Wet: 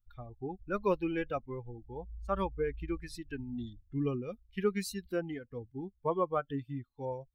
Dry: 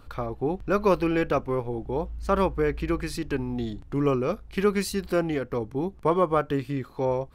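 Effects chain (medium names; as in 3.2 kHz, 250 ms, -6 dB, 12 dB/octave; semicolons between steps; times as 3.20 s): expander on every frequency bin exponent 2; trim -5.5 dB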